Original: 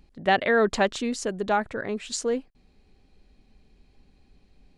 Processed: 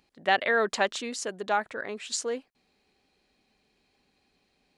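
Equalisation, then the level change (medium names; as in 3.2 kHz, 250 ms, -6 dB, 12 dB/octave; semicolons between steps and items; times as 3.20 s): high-pass 710 Hz 6 dB/octave; 0.0 dB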